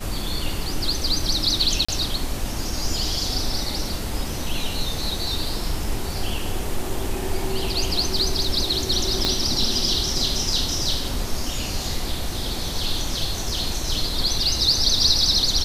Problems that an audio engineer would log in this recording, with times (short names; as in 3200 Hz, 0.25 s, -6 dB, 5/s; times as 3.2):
1.85–1.89 gap 35 ms
9.25 pop -6 dBFS